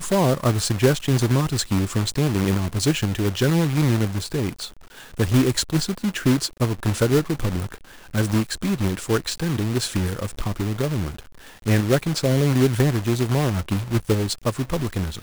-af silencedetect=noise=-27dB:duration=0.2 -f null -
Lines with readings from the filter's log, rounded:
silence_start: 4.66
silence_end: 5.19 | silence_duration: 0.53
silence_start: 7.74
silence_end: 8.14 | silence_duration: 0.40
silence_start: 11.19
silence_end: 11.66 | silence_duration: 0.47